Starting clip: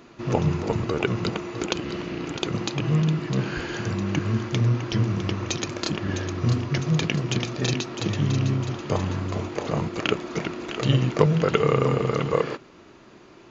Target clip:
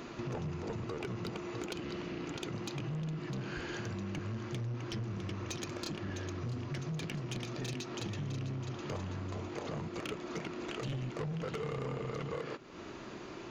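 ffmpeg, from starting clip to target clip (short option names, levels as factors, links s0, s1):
-af "asoftclip=type=tanh:threshold=0.0944,acompressor=threshold=0.00631:ratio=4,volume=1.58"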